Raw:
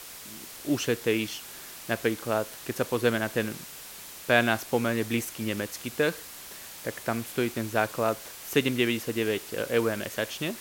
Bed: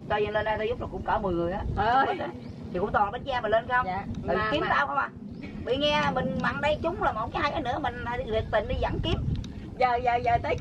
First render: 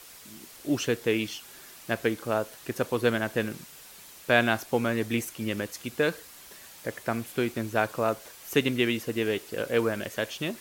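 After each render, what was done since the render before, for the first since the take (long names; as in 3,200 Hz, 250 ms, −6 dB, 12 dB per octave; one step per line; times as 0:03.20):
broadband denoise 6 dB, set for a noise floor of −44 dBFS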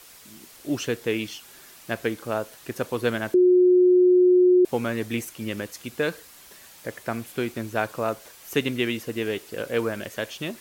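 0:03.34–0:04.65: beep over 362 Hz −13 dBFS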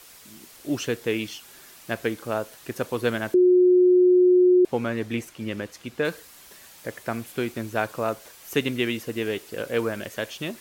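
0:04.65–0:06.05: low-pass filter 3,900 Hz 6 dB per octave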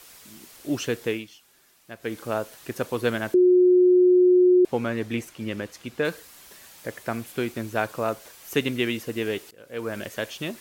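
0:01.07–0:02.18: duck −12 dB, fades 0.19 s
0:09.51–0:09.97: fade in quadratic, from −21 dB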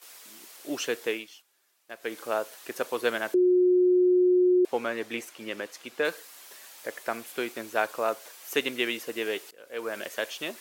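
noise gate −51 dBFS, range −10 dB
high-pass filter 420 Hz 12 dB per octave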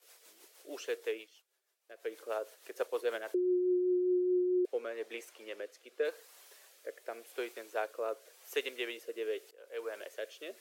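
four-pole ladder high-pass 370 Hz, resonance 45%
rotating-speaker cabinet horn 6.3 Hz, later 0.9 Hz, at 0:03.20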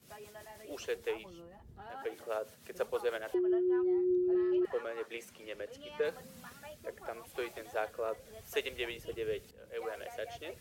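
mix in bed −24.5 dB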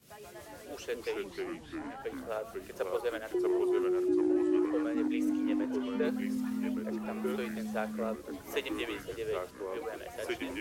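delay with pitch and tempo change per echo 109 ms, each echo −3 semitones, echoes 3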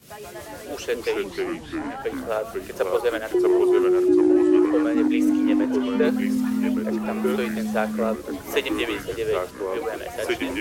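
level +11 dB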